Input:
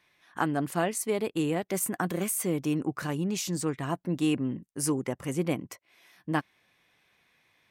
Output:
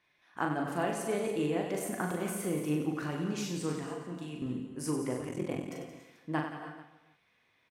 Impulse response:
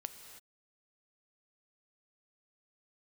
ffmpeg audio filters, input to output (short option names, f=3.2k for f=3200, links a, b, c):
-filter_complex "[0:a]asettb=1/sr,asplit=3[a][b][c];[a]atrim=end=3.784[d];[b]atrim=start=3.78:end=4.42,asetpts=PTS-STARTPTS,afade=t=in:d=0.004:c=qsin,afade=t=out:st=0.636:d=0.004:c=qsin,acrossover=split=180|3000[e][f][g];[e]acompressor=threshold=-43dB:ratio=4[h];[f]acompressor=threshold=-38dB:ratio=4[i];[g]acompressor=threshold=-49dB:ratio=4[j];[h][i][j]amix=inputs=3:normalize=0[k];[c]atrim=start=4.416[l];[d][k]acrossfade=d=0.004:c1=hsin:c2=qsin[m];[m][l]acrossfade=d=0.004:c1=qsin:c2=hsin,aecho=1:1:40|96|174.4|284.2|437.8:0.631|0.398|0.251|0.158|0.1[n];[1:a]atrim=start_sample=2205[o];[n][o]afir=irnorm=-1:irlink=0,asettb=1/sr,asplit=3[p][q][r];[p]atrim=end=5.274[s];[q]atrim=start=5.27:end=5.72,asetpts=PTS-STARTPTS,afade=t=in:d=0.004:c=qsin,afade=t=out:st=0.446:d=0.004:c=qsin,aeval=exprs='val(0)*sin(2*PI*21*n/s)':c=same[t];[r]atrim=start=5.716[u];[s][t]acrossfade=d=0.004:c1=hsin:c2=qsin[v];[v][u]acrossfade=d=0.004:c1=qsin:c2=hsin,lowpass=f=4k:p=1,equalizer=f=130:w=1.4:g=-2.5,volume=-2dB"